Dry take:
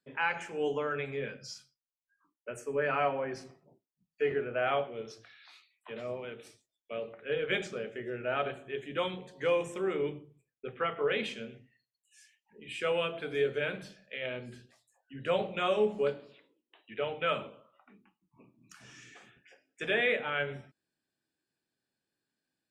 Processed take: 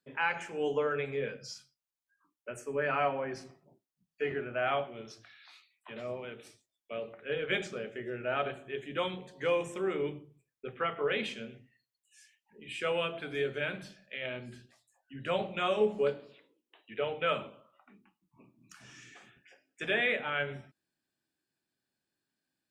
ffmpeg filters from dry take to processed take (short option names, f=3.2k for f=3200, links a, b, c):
-af "asetnsamples=n=441:p=0,asendcmd='0.77 equalizer g 6.5;1.52 equalizer g -5;4.24 equalizer g -12;5.96 equalizer g -3;13.18 equalizer g -9.5;15.81 equalizer g 2;17.37 equalizer g -5.5',equalizer=f=470:t=o:w=0.23:g=-1"